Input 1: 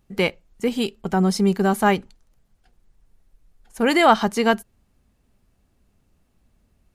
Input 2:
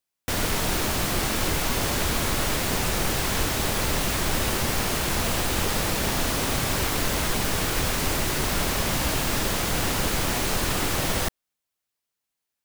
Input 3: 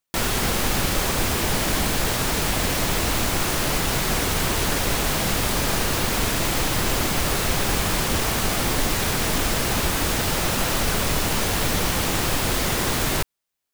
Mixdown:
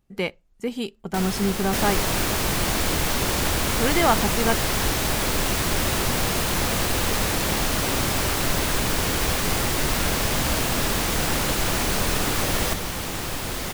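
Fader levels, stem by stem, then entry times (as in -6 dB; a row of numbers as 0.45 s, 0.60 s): -5.5 dB, +0.5 dB, -6.5 dB; 0.00 s, 1.45 s, 1.00 s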